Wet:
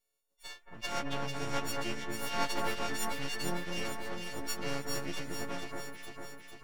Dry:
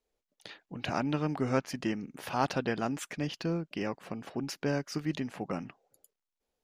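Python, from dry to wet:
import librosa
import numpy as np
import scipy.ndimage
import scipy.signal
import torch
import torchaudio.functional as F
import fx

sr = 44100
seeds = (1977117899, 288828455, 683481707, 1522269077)

y = fx.freq_snap(x, sr, grid_st=4)
y = fx.low_shelf(y, sr, hz=160.0, db=-5.5)
y = np.maximum(y, 0.0)
y = fx.echo_alternate(y, sr, ms=225, hz=1900.0, feedback_pct=77, wet_db=-3.0)
y = fx.attack_slew(y, sr, db_per_s=390.0)
y = F.gain(torch.from_numpy(y), -2.5).numpy()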